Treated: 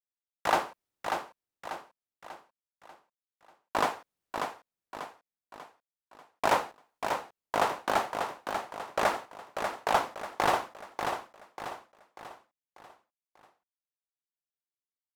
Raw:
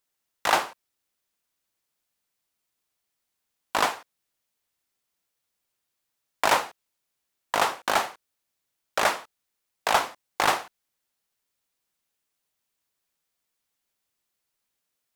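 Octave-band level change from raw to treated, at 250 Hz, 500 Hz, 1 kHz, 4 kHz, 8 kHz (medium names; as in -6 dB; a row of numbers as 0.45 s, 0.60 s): +0.5 dB, -0.5 dB, -2.5 dB, -7.5 dB, -8.5 dB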